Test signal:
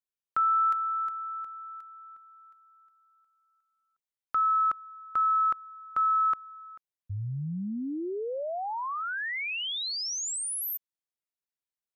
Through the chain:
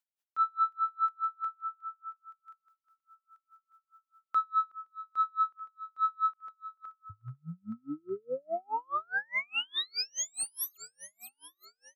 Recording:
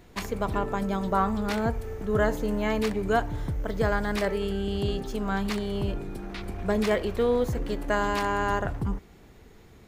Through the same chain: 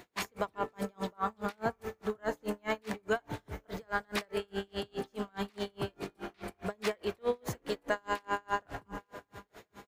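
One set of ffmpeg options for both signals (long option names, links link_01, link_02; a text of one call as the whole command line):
ffmpeg -i in.wav -filter_complex "[0:a]highpass=frequency=170:poles=1,acompressor=threshold=-32dB:ratio=2:attack=0.6:release=45:knee=6,crystalizer=i=2:c=0,asplit=2[link_01][link_02];[link_02]aecho=0:1:879|1758|2637|3516:0.0794|0.0461|0.0267|0.0155[link_03];[link_01][link_03]amix=inputs=2:normalize=0,asplit=2[link_04][link_05];[link_05]highpass=frequency=720:poles=1,volume=7dB,asoftclip=type=tanh:threshold=-18dB[link_06];[link_04][link_06]amix=inputs=2:normalize=0,lowpass=frequency=2000:poles=1,volume=-6dB,asplit=2[link_07][link_08];[link_08]aecho=0:1:519:0.168[link_09];[link_07][link_09]amix=inputs=2:normalize=0,aeval=exprs='val(0)*pow(10,-38*(0.5-0.5*cos(2*PI*4.8*n/s))/20)':channel_layout=same,volume=5dB" out.wav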